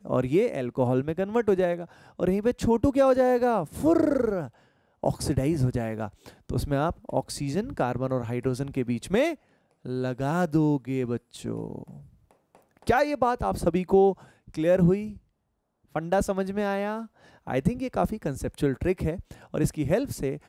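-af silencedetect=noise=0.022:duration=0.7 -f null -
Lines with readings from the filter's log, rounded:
silence_start: 11.83
silence_end: 12.87 | silence_duration: 1.04
silence_start: 15.11
silence_end: 15.96 | silence_duration: 0.85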